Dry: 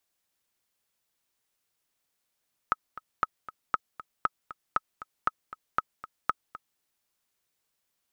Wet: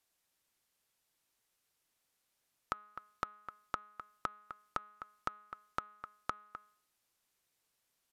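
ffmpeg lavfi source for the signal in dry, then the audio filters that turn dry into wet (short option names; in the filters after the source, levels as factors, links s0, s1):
-f lavfi -i "aevalsrc='pow(10,(-10.5-16*gte(mod(t,2*60/235),60/235))/20)*sin(2*PI*1280*mod(t,60/235))*exp(-6.91*mod(t,60/235)/0.03)':d=4.08:s=44100"
-af "bandreject=f=209.1:t=h:w=4,bandreject=f=418.2:t=h:w=4,bandreject=f=627.3:t=h:w=4,bandreject=f=836.4:t=h:w=4,bandreject=f=1045.5:t=h:w=4,bandreject=f=1254.6:t=h:w=4,bandreject=f=1463.7:t=h:w=4,bandreject=f=1672.8:t=h:w=4,bandreject=f=1881.9:t=h:w=4,bandreject=f=2091:t=h:w=4,bandreject=f=2300.1:t=h:w=4,bandreject=f=2509.2:t=h:w=4,bandreject=f=2718.3:t=h:w=4,bandreject=f=2927.4:t=h:w=4,bandreject=f=3136.5:t=h:w=4,bandreject=f=3345.6:t=h:w=4,bandreject=f=3554.7:t=h:w=4,bandreject=f=3763.8:t=h:w=4,bandreject=f=3972.9:t=h:w=4,bandreject=f=4182:t=h:w=4,acompressor=threshold=0.00891:ratio=2,aresample=32000,aresample=44100"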